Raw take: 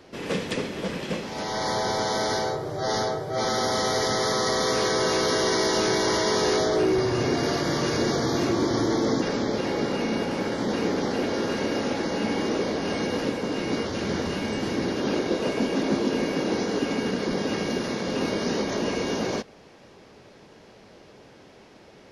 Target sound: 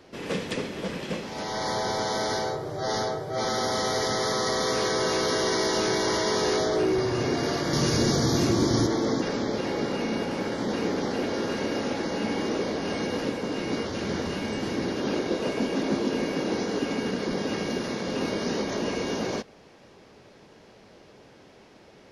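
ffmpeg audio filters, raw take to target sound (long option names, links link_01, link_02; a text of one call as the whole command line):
ffmpeg -i in.wav -filter_complex "[0:a]asettb=1/sr,asplit=3[link_01][link_02][link_03];[link_01]atrim=end=7.734[link_04];[link_02]atrim=start=7.73:end=8.87,asetpts=PTS-STARTPTS,afade=type=in:duration=0.004:curve=qsin,afade=type=out:start_time=1.136:duration=0.004:curve=qsin,bass=frequency=250:gain=8,treble=frequency=4000:gain=8[link_05];[link_03]atrim=start=8.866[link_06];[link_04][link_05]acrossfade=duration=0.004:curve1=hsin:curve2=qsin[link_07];[link_07][link_06]acrossfade=duration=0.004:curve1=qsin:curve2=hsin,volume=-2dB" out.wav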